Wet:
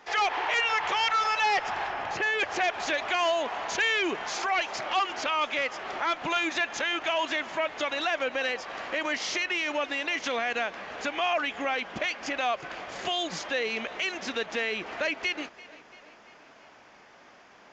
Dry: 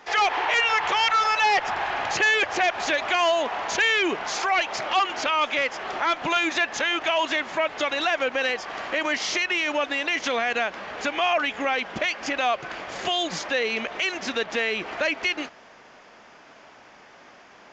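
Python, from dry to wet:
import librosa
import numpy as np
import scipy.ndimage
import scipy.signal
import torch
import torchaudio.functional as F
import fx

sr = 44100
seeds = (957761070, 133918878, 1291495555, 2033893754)

y = fx.high_shelf(x, sr, hz=3400.0, db=-12.0, at=(1.87, 2.38), fade=0.02)
y = fx.echo_feedback(y, sr, ms=340, feedback_pct=58, wet_db=-20.5)
y = y * 10.0 ** (-4.5 / 20.0)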